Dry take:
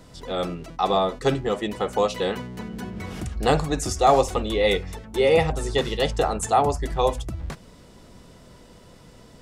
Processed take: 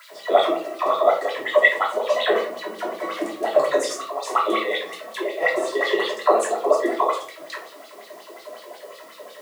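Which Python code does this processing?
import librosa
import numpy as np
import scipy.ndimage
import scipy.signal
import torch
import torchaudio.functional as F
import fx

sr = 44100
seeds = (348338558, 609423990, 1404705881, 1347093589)

y = scipy.signal.sosfilt(scipy.signal.butter(2, 94.0, 'highpass', fs=sr, output='sos'), x)
y = fx.low_shelf(y, sr, hz=220.0, db=-9.5)
y = fx.over_compress(y, sr, threshold_db=-25.0, ratio=-0.5)
y = fx.small_body(y, sr, hz=(620.0, 1100.0, 1900.0), ring_ms=45, db=17)
y = fx.quant_dither(y, sr, seeds[0], bits=8, dither='triangular')
y = fx.filter_lfo_highpass(y, sr, shape='sine', hz=5.5, low_hz=330.0, high_hz=4200.0, q=7.3)
y = fx.room_shoebox(y, sr, seeds[1], volume_m3=330.0, walls='furnished', distance_m=3.0)
y = y * librosa.db_to_amplitude(-10.0)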